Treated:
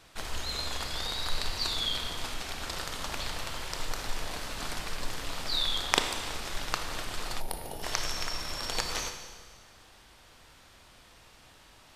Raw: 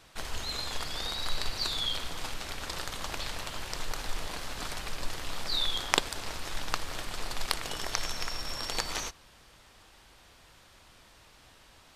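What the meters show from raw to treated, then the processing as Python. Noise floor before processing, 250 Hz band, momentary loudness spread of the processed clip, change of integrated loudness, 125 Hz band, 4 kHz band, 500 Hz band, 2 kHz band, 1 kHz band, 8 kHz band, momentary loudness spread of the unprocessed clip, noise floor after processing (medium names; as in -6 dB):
-58 dBFS, +1.0 dB, 9 LU, +1.0 dB, +1.0 dB, +1.0 dB, +1.0 dB, +1.0 dB, +1.0 dB, +1.0 dB, 9 LU, -56 dBFS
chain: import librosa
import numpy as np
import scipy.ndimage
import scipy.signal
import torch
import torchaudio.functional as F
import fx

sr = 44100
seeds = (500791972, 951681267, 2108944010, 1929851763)

y = fx.rev_schroeder(x, sr, rt60_s=1.6, comb_ms=25, drr_db=5.5)
y = fx.spec_box(y, sr, start_s=7.4, length_s=0.43, low_hz=960.0, high_hz=9200.0, gain_db=-14)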